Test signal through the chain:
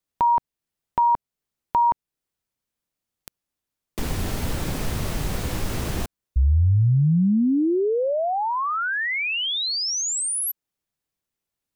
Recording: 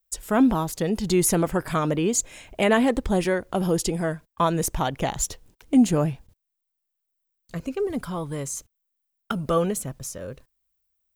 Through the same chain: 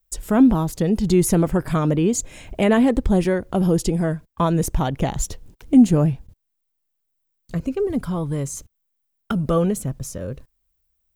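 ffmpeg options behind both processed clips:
-filter_complex "[0:a]lowshelf=f=400:g=10.5,asplit=2[s0][s1];[s1]acompressor=threshold=0.0224:ratio=6,volume=0.891[s2];[s0][s2]amix=inputs=2:normalize=0,volume=0.708"

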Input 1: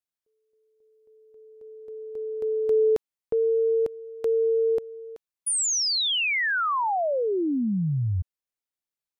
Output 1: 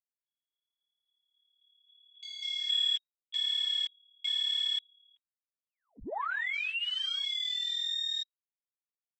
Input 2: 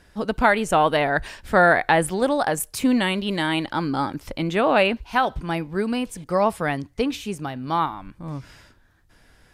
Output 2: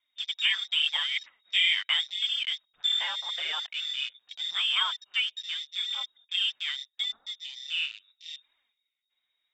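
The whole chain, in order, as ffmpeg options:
-af "lowpass=f=3200:t=q:w=0.5098,lowpass=f=3200:t=q:w=0.6013,lowpass=f=3200:t=q:w=0.9,lowpass=f=3200:t=q:w=2.563,afreqshift=-3800,afwtdn=0.0355,flanger=delay=2.8:depth=6.6:regen=4:speed=0.82:shape=triangular,volume=0.531"

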